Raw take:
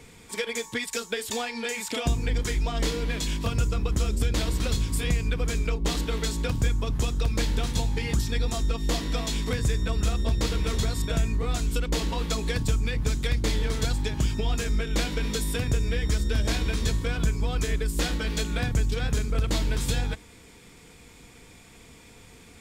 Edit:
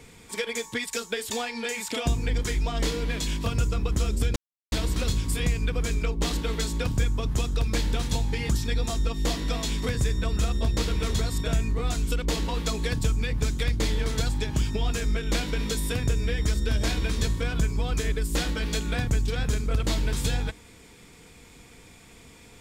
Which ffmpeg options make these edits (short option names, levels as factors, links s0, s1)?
-filter_complex "[0:a]asplit=2[s0][s1];[s0]atrim=end=4.36,asetpts=PTS-STARTPTS,afade=t=out:st=4.356:d=0.004:c=hsin,apad=pad_dur=0.36[s2];[s1]atrim=start=4.36,asetpts=PTS-STARTPTS,afade=t=in:d=0.004:c=hsin[s3];[s2][s3]concat=n=2:v=0:a=1"